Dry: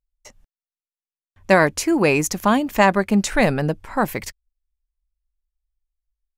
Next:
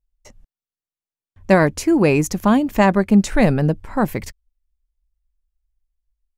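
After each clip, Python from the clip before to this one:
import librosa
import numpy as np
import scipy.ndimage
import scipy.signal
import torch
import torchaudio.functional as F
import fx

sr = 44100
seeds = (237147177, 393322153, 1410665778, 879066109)

y = fx.low_shelf(x, sr, hz=460.0, db=10.0)
y = F.gain(torch.from_numpy(y), -3.5).numpy()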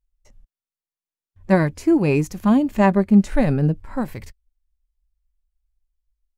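y = fx.hpss(x, sr, part='percussive', gain_db=-12)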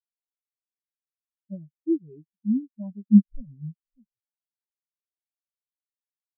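y = fx.leveller(x, sr, passes=1)
y = fx.vibrato(y, sr, rate_hz=1.4, depth_cents=30.0)
y = fx.spectral_expand(y, sr, expansion=4.0)
y = F.gain(torch.from_numpy(y), -2.0).numpy()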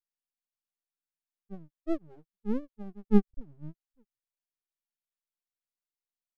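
y = np.maximum(x, 0.0)
y = F.gain(torch.from_numpy(y), -2.5).numpy()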